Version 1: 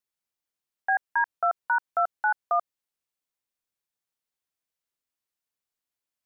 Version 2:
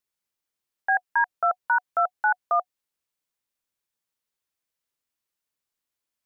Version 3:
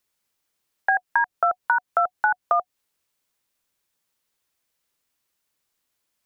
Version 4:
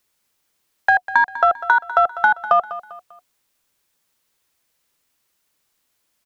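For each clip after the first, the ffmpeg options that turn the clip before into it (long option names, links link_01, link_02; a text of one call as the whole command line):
ffmpeg -i in.wav -af "bandreject=frequency=730:width=18,volume=2.5dB" out.wav
ffmpeg -i in.wav -filter_complex "[0:a]acrossover=split=310[link_01][link_02];[link_02]acompressor=threshold=-27dB:ratio=6[link_03];[link_01][link_03]amix=inputs=2:normalize=0,volume=9dB" out.wav
ffmpeg -i in.wav -filter_complex "[0:a]asplit=2[link_01][link_02];[link_02]asoftclip=type=tanh:threshold=-16dB,volume=-4.5dB[link_03];[link_01][link_03]amix=inputs=2:normalize=0,aecho=1:1:198|396|594:0.178|0.0676|0.0257,volume=2.5dB" out.wav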